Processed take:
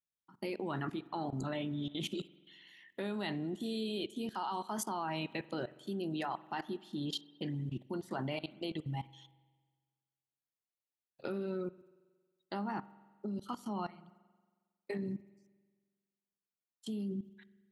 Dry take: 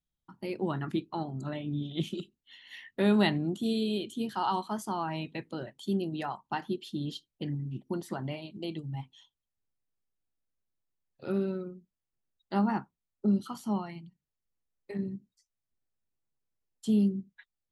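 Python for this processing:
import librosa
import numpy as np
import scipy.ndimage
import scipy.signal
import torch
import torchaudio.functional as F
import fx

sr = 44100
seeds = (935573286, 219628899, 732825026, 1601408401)

y = fx.highpass(x, sr, hz=270.0, slope=6)
y = fx.level_steps(y, sr, step_db=22)
y = fx.rev_spring(y, sr, rt60_s=1.5, pass_ms=(45,), chirp_ms=60, drr_db=18.5)
y = y * librosa.db_to_amplitude(7.0)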